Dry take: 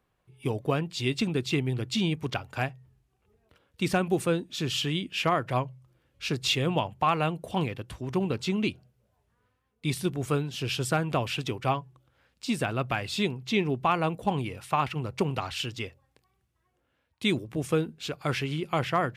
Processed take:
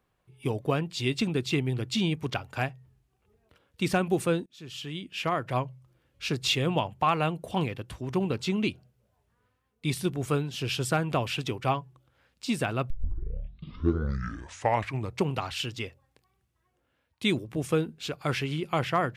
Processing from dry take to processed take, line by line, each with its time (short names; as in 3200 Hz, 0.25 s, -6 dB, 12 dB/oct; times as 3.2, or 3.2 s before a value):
4.46–5.7 fade in linear, from -23.5 dB
12.9 tape start 2.36 s